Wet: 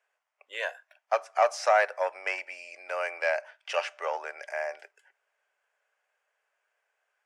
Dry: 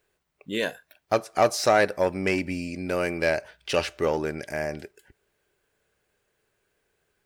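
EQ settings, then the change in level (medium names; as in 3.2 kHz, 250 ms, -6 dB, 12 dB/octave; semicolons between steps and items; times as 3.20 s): steep high-pass 600 Hz 36 dB/octave; distance through air 89 m; peaking EQ 4 kHz -11 dB 0.51 oct; 0.0 dB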